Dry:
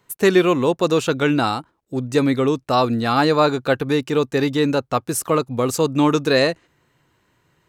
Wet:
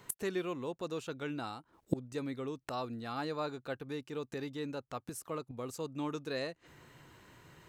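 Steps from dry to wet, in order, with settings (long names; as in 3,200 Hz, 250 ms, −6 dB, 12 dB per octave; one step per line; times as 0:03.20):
gate with flip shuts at −23 dBFS, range −26 dB
level +5 dB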